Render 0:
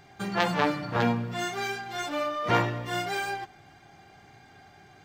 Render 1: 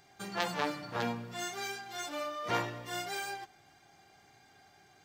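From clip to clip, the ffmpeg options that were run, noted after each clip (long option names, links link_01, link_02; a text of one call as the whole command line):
ffmpeg -i in.wav -af "bass=frequency=250:gain=-5,treble=frequency=4000:gain=8,volume=-8dB" out.wav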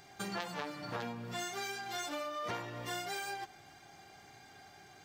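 ffmpeg -i in.wav -af "acompressor=threshold=-41dB:ratio=12,volume=5dB" out.wav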